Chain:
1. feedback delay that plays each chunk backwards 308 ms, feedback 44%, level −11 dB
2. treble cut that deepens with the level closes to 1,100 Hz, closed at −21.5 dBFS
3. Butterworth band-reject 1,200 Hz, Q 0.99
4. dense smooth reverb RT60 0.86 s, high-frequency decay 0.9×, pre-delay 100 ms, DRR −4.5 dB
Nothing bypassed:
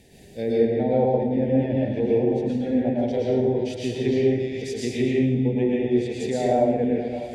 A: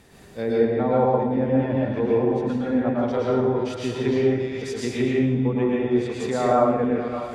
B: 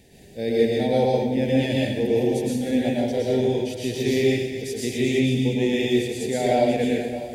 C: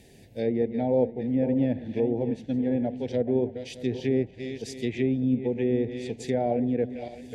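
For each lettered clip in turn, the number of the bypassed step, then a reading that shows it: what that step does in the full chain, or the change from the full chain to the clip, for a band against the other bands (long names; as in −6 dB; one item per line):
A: 3, 1 kHz band +5.0 dB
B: 2, 4 kHz band +8.5 dB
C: 4, change in momentary loudness spread +2 LU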